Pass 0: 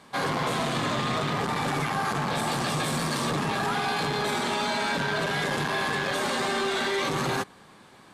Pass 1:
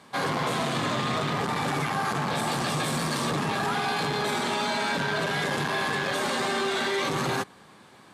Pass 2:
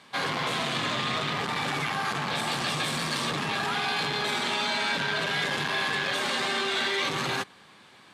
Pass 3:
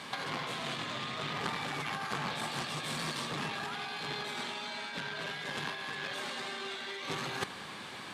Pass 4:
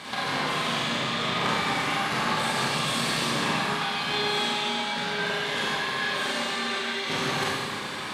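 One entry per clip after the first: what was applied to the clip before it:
high-pass filter 61 Hz
parametric band 3,000 Hz +9 dB 2.1 octaves; level −5 dB
compressor whose output falls as the input rises −35 dBFS, ratio −0.5
four-comb reverb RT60 1.5 s, combs from 30 ms, DRR −6 dB; level +3.5 dB

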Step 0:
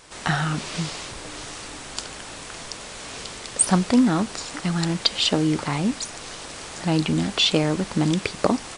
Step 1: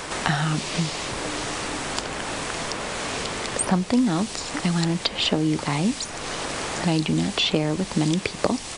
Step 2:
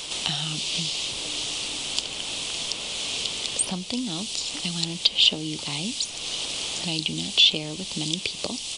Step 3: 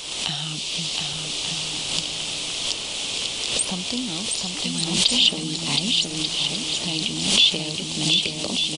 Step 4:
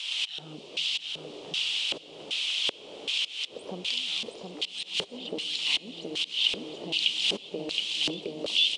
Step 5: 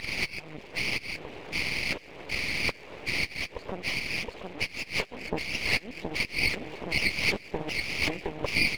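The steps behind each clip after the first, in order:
dynamic equaliser 1,400 Hz, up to −4 dB, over −44 dBFS, Q 3; multiband upward and downward compressor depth 70%
high shelf with overshoot 2,300 Hz +10.5 dB, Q 3; level −10 dB
bouncing-ball delay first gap 720 ms, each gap 0.65×, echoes 5; background raised ahead of every attack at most 58 dB per second
volume swells 234 ms; auto-filter band-pass square 1.3 Hz 440–2,900 Hz; on a send at −19 dB: convolution reverb RT60 5.5 s, pre-delay 53 ms; on the sum: level +2.5 dB
hearing-aid frequency compression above 1,200 Hz 1.5 to 1; half-wave rectification; harmonic and percussive parts rebalanced percussive +8 dB

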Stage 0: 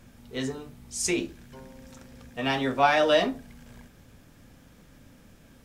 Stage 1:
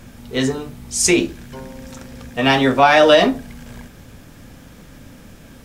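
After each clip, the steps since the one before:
boost into a limiter +13 dB
level −1 dB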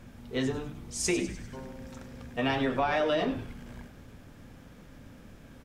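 high-shelf EQ 4,000 Hz −8 dB
downward compressor 6 to 1, threshold −16 dBFS, peak gain reduction 8.5 dB
on a send: echo with shifted repeats 99 ms, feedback 54%, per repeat −150 Hz, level −12 dB
on the sum: level −8.5 dB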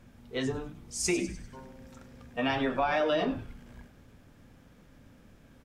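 noise reduction from a noise print of the clip's start 6 dB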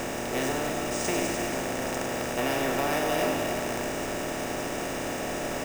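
compressor on every frequency bin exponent 0.2
on a send at −7.5 dB: convolution reverb RT60 0.40 s, pre-delay 230 ms
on the sum: bad sample-rate conversion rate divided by 3×, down none, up hold
level −6 dB

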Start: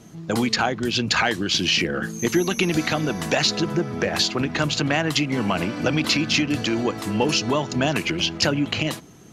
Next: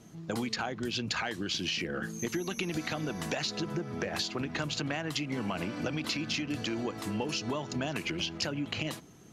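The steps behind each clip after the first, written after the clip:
downward compressor, threshold −22 dBFS, peak gain reduction 7.5 dB
level −7.5 dB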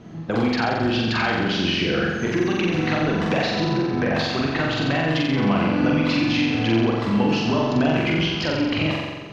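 in parallel at −4 dB: hard clipping −32 dBFS, distortion −10 dB
on the sum: high-frequency loss of the air 240 metres
flutter between parallel walls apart 7.6 metres, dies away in 1.3 s
level +7 dB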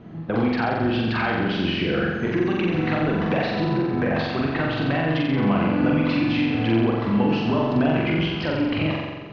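high-frequency loss of the air 250 metres

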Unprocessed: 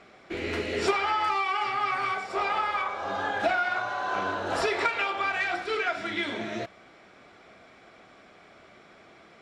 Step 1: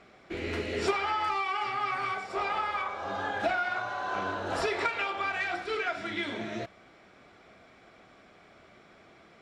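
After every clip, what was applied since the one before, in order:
low-shelf EQ 180 Hz +5 dB
level −3.5 dB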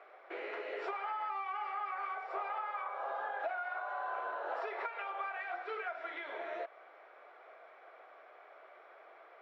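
inverse Chebyshev high-pass filter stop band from 190 Hz, stop band 50 dB
downward compressor 4 to 1, threshold −39 dBFS, peak gain reduction 12.5 dB
low-pass filter 1,600 Hz 12 dB per octave
level +3 dB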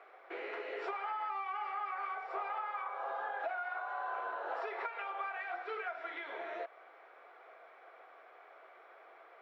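notch filter 600 Hz, Q 12

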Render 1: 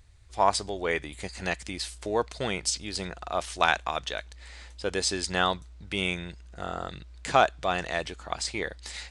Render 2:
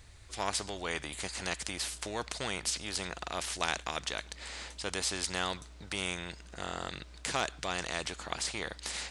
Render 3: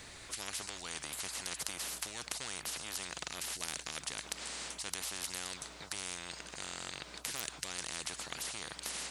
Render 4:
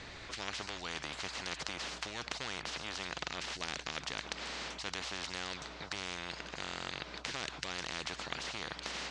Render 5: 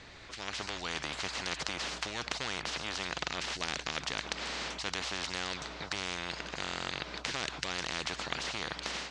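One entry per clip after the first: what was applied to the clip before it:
every bin compressed towards the loudest bin 2 to 1; level −6.5 dB
noise reduction from a noise print of the clip's start 14 dB; every bin compressed towards the loudest bin 10 to 1; level +1.5 dB
Bessel low-pass filter 4,000 Hz, order 6; level +4.5 dB
automatic gain control gain up to 7.5 dB; level −3.5 dB

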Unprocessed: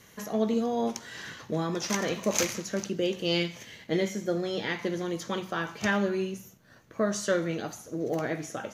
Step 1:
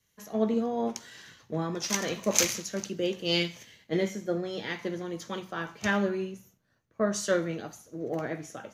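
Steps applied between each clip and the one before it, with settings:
multiband upward and downward expander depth 70%
level −1.5 dB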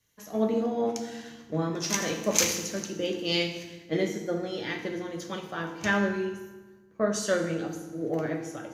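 feedback delay network reverb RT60 1.3 s, low-frequency decay 1.45×, high-frequency decay 0.75×, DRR 4.5 dB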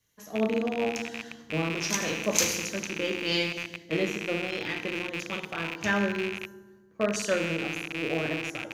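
loose part that buzzes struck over −44 dBFS, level −21 dBFS
level −1 dB

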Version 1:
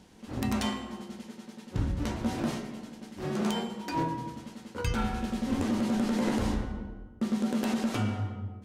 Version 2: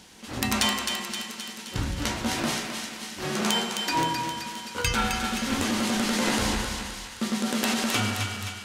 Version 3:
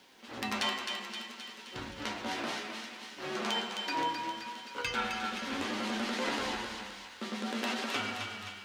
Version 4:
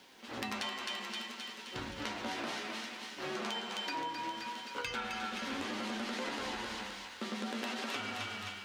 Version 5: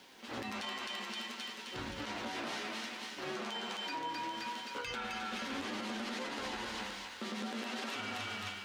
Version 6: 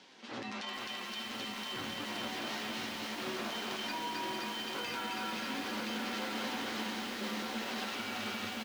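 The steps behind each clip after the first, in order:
tilt shelving filter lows −7 dB; feedback echo with a high-pass in the loop 262 ms, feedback 62%, high-pass 860 Hz, level −5 dB; level +6.5 dB
three-way crossover with the lows and the highs turned down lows −15 dB, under 240 Hz, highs −14 dB, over 4,900 Hz; flanger 0.63 Hz, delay 7.1 ms, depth 3.8 ms, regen +55%; bit-depth reduction 12 bits, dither triangular; level −2 dB
downward compressor, threshold −36 dBFS, peak gain reduction 8.5 dB; level +1 dB
brickwall limiter −31.5 dBFS, peak gain reduction 11 dB; level +1 dB
Chebyshev band-pass filter 140–5,900 Hz, order 2; single-tap delay 1,021 ms −3.5 dB; feedback echo at a low word length 444 ms, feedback 80%, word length 8 bits, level −5 dB

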